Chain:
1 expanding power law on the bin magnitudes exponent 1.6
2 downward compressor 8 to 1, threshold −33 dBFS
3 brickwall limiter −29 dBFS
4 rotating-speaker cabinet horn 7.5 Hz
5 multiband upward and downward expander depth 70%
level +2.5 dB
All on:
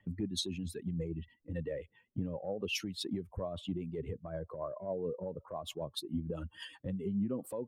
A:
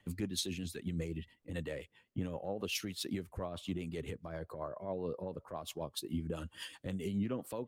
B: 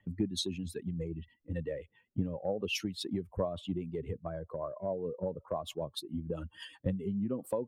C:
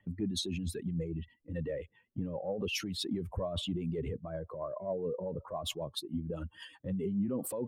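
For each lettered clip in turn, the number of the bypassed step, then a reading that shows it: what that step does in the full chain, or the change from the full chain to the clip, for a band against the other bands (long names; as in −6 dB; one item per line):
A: 1, 8 kHz band +3.5 dB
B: 3, change in crest factor +2.0 dB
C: 2, average gain reduction 9.5 dB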